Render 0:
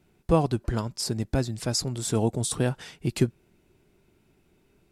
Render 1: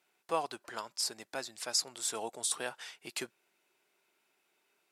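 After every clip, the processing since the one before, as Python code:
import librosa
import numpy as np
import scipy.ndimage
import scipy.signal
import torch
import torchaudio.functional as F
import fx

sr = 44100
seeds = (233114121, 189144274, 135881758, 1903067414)

y = scipy.signal.sosfilt(scipy.signal.butter(2, 830.0, 'highpass', fs=sr, output='sos'), x)
y = y * librosa.db_to_amplitude(-2.5)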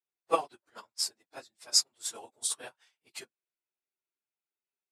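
y = fx.phase_scramble(x, sr, seeds[0], window_ms=50)
y = fx.upward_expand(y, sr, threshold_db=-50.0, expansion=2.5)
y = y * librosa.db_to_amplitude(8.0)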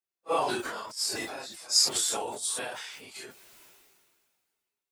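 y = fx.phase_scramble(x, sr, seeds[1], window_ms=100)
y = fx.sustainer(y, sr, db_per_s=30.0)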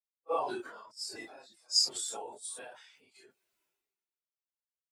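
y = fx.spectral_expand(x, sr, expansion=1.5)
y = y * librosa.db_to_amplitude(-4.0)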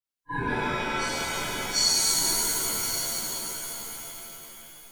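y = fx.band_swap(x, sr, width_hz=500)
y = y + 10.0 ** (-10.5 / 20.0) * np.pad(y, (int(1073 * sr / 1000.0), 0))[:len(y)]
y = fx.rev_shimmer(y, sr, seeds[2], rt60_s=3.5, semitones=7, shimmer_db=-2, drr_db=-8.5)
y = y * librosa.db_to_amplitude(-1.5)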